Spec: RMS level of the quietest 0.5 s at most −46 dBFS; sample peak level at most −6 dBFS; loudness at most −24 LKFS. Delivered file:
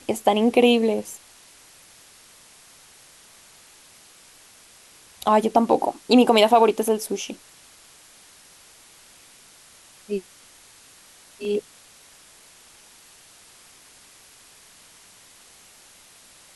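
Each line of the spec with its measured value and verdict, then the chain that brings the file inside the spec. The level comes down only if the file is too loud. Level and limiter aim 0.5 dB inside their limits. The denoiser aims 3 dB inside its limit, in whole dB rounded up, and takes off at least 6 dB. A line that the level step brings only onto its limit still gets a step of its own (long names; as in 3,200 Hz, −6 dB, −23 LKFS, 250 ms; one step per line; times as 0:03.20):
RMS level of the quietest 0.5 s −51 dBFS: in spec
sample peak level −4.5 dBFS: out of spec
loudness −20.5 LKFS: out of spec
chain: level −4 dB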